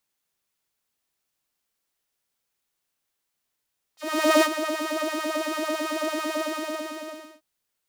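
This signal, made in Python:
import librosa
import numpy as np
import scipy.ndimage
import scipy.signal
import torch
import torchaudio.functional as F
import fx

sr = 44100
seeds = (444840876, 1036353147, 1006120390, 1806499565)

y = fx.sub_patch_wobble(sr, seeds[0], note=75, wave='saw', wave2='saw', interval_st=0, level2_db=-9.0, sub_db=-6.5, noise_db=-30.0, kind='highpass', cutoff_hz=250.0, q=1.6, env_oct=3.5, env_decay_s=0.08, env_sustain_pct=30, attack_ms=453.0, decay_s=0.06, sustain_db=-11, release_s=1.05, note_s=2.39, lfo_hz=9.0, wobble_oct=1.4)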